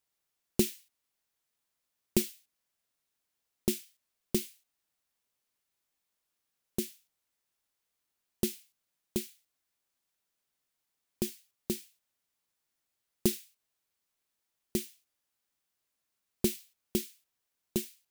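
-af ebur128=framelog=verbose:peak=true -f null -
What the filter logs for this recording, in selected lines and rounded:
Integrated loudness:
  I:         -35.2 LUFS
  Threshold: -46.2 LUFS
Loudness range:
  LRA:         6.3 LU
  Threshold: -60.4 LUFS
  LRA low:   -43.7 LUFS
  LRA high:  -37.5 LUFS
True peak:
  Peak:       -9.8 dBFS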